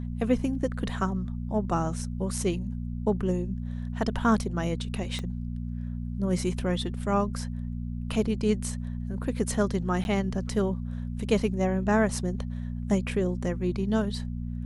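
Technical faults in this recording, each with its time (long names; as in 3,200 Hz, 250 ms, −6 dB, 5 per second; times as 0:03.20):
mains hum 60 Hz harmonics 4 −33 dBFS
0:05.19: click −21 dBFS
0:10.04–0:10.05: drop-out 11 ms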